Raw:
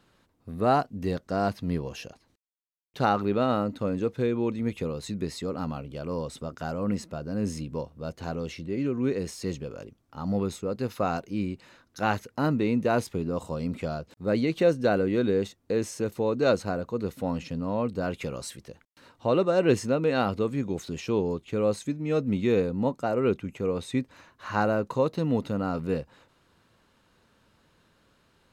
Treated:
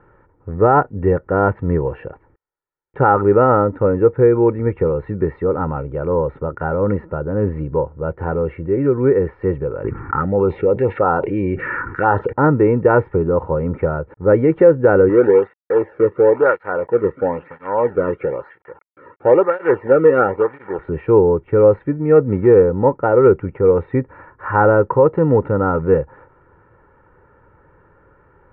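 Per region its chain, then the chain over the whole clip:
0:09.84–0:12.33: spectral tilt +2.5 dB per octave + phaser swept by the level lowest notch 570 Hz, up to 2,300 Hz, full sweep at −25.5 dBFS + envelope flattener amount 70%
0:15.09–0:20.79: log-companded quantiser 4 bits + through-zero flanger with one copy inverted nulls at 1 Hz, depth 1.4 ms
0:22.15–0:23.27: running median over 15 samples + bass and treble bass −1 dB, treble +9 dB
whole clip: Butterworth low-pass 1,800 Hz 36 dB per octave; comb filter 2.2 ms, depth 65%; boost into a limiter +13 dB; level −1 dB

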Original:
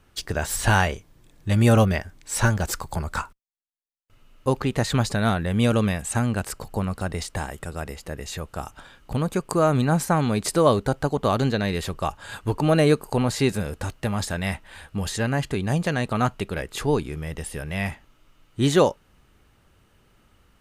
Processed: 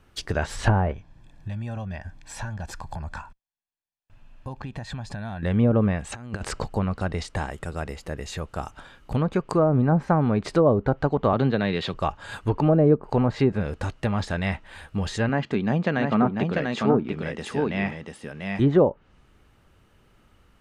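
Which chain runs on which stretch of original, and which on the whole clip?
0:00.92–0:05.43: high-shelf EQ 7,100 Hz −10.5 dB + downward compressor 5 to 1, threshold −34 dBFS + comb filter 1.2 ms, depth 57%
0:06.12–0:06.67: low-pass filter 9,600 Hz + compressor whose output falls as the input rises −30 dBFS, ratio −0.5
0:11.33–0:11.94: high-pass filter 110 Hz 24 dB per octave + parametric band 3,700 Hz +9.5 dB 0.93 octaves
0:15.29–0:18.60: band-pass filter 160–7,200 Hz + parametric band 220 Hz +8 dB 0.31 octaves + single-tap delay 693 ms −4 dB
whole clip: treble cut that deepens with the level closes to 680 Hz, closed at −14.5 dBFS; high-shelf EQ 4,200 Hz −5.5 dB; level +1 dB

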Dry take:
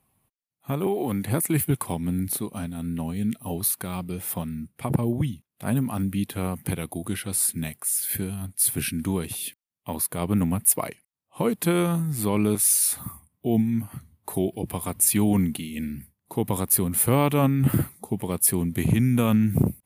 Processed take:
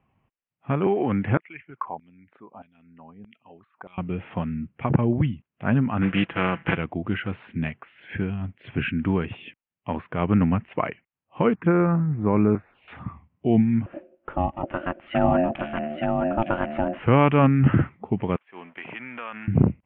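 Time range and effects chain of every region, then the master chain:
0:01.37–0:03.98: spectral envelope exaggerated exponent 1.5 + auto-filter band-pass saw down 1.6 Hz 730–4,000 Hz
0:06.01–0:06.76: compressing power law on the bin magnitudes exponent 0.56 + comb filter 6 ms, depth 53%
0:11.55–0:12.88: de-essing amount 60% + phaser swept by the level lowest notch 490 Hz, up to 3,100 Hz, full sweep at −25 dBFS
0:13.86–0:17.03: single-tap delay 869 ms −3.5 dB + ring modulation 450 Hz
0:18.36–0:19.48: mu-law and A-law mismatch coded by A + high-pass filter 840 Hz + downward compressor 8 to 1, threshold −33 dBFS
whole clip: Butterworth low-pass 3,000 Hz 72 dB per octave; dynamic equaliser 1,500 Hz, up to +6 dB, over −48 dBFS, Q 2.1; level +3 dB

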